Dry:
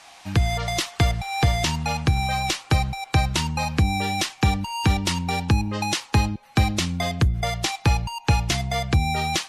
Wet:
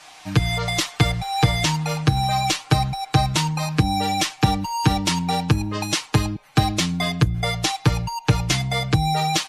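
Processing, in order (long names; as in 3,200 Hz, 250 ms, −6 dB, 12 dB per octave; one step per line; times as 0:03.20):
comb filter 6.6 ms, depth 96%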